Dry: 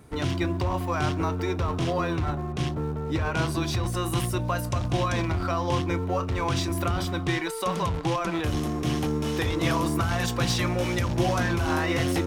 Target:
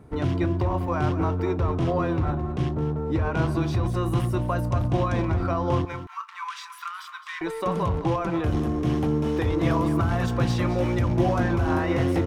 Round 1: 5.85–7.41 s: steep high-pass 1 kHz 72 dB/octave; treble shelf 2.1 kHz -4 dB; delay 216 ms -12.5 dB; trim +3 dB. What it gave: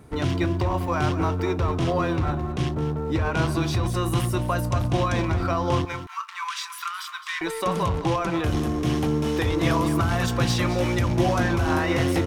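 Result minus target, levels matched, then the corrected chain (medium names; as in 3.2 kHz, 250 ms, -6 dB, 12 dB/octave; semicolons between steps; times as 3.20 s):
4 kHz band +7.5 dB
5.85–7.41 s: steep high-pass 1 kHz 72 dB/octave; treble shelf 2.1 kHz -15 dB; delay 216 ms -12.5 dB; trim +3 dB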